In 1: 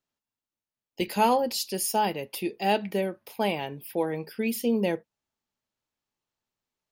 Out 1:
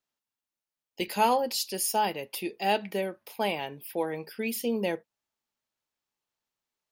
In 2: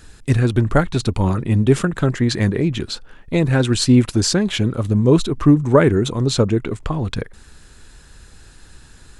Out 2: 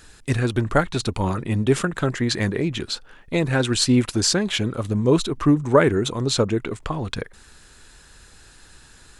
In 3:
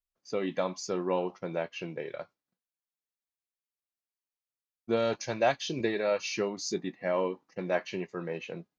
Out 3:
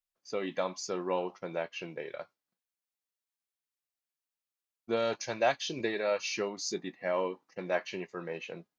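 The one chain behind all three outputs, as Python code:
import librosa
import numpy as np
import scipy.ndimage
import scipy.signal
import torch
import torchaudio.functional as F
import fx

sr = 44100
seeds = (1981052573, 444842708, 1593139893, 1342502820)

y = fx.low_shelf(x, sr, hz=340.0, db=-7.5)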